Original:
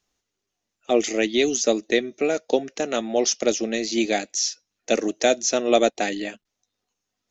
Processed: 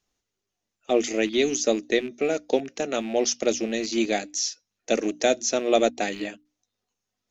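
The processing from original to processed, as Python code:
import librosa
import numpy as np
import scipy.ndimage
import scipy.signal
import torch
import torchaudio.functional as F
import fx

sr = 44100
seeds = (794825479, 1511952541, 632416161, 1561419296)

y = fx.rattle_buzz(x, sr, strikes_db=-35.0, level_db=-28.0)
y = fx.low_shelf(y, sr, hz=330.0, db=3.5)
y = fx.hum_notches(y, sr, base_hz=60, count=5)
y = F.gain(torch.from_numpy(y), -3.0).numpy()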